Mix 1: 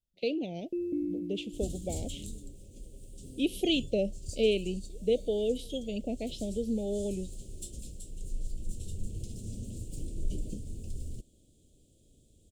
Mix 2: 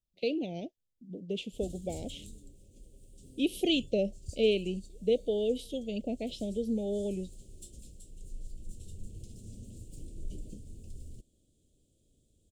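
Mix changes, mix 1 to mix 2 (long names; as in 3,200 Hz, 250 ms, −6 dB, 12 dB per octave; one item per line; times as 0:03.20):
first sound: muted
second sound −7.0 dB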